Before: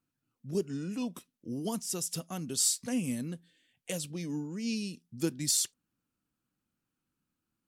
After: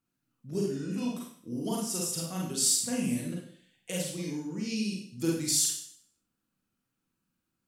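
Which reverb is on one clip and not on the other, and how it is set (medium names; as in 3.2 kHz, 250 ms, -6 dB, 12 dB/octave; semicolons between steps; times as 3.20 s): Schroeder reverb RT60 0.57 s, combs from 33 ms, DRR -3 dB; trim -2 dB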